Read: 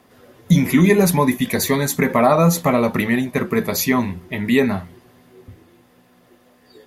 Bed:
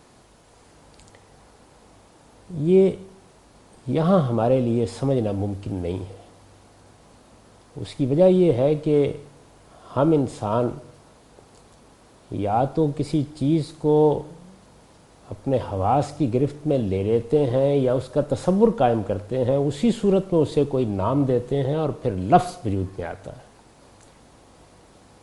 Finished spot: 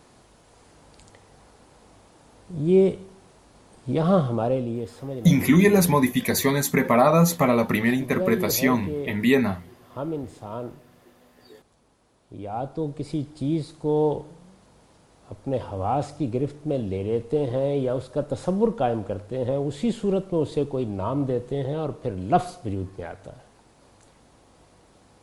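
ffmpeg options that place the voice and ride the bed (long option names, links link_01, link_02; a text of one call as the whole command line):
ffmpeg -i stem1.wav -i stem2.wav -filter_complex "[0:a]adelay=4750,volume=-3dB[link_01];[1:a]volume=5.5dB,afade=type=out:start_time=4.18:duration=0.77:silence=0.316228,afade=type=in:start_time=12.32:duration=1.07:silence=0.446684[link_02];[link_01][link_02]amix=inputs=2:normalize=0" out.wav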